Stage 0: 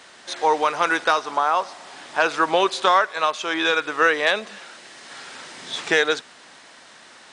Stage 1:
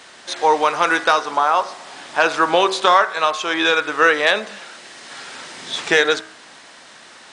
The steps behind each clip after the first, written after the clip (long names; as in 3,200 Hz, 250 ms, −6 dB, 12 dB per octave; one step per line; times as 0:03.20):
hum removal 63.47 Hz, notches 35
level +4 dB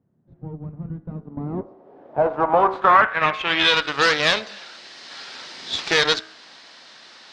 harmonic generator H 8 −15 dB, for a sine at −1 dBFS
high-pass filter 89 Hz 6 dB per octave
low-pass filter sweep 150 Hz → 4,700 Hz, 0:01.01–0:03.92
level −5.5 dB